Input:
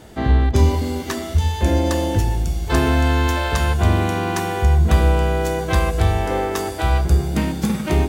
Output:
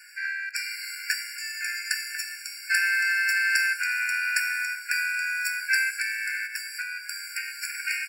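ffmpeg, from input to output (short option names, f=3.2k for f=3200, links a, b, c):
-filter_complex "[0:a]highpass=690,aecho=1:1:1.3:0.59,asplit=3[a][b][c];[a]afade=t=out:st=6.46:d=0.02[d];[b]acompressor=threshold=-28dB:ratio=6,afade=t=in:st=6.46:d=0.02,afade=t=out:st=7.76:d=0.02[e];[c]afade=t=in:st=7.76:d=0.02[f];[d][e][f]amix=inputs=3:normalize=0,afftfilt=real='re*eq(mod(floor(b*sr/1024/1400),2),1)':imag='im*eq(mod(floor(b*sr/1024/1400),2),1)':win_size=1024:overlap=0.75,volume=4dB"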